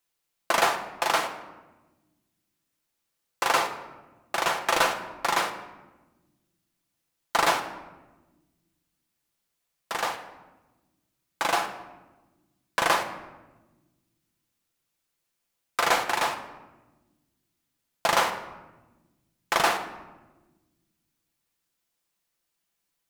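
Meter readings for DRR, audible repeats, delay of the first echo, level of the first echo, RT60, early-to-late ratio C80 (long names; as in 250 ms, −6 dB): 5.0 dB, no echo audible, no echo audible, no echo audible, 1.2 s, 12.0 dB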